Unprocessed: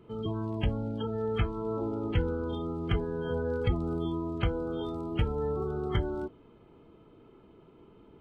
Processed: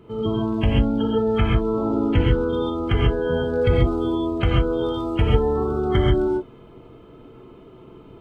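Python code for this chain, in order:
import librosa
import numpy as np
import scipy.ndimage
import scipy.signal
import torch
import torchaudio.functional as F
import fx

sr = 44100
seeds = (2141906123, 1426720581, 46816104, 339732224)

y = fx.rev_gated(x, sr, seeds[0], gate_ms=160, shape='rising', drr_db=-2.0)
y = y * librosa.db_to_amplitude(7.0)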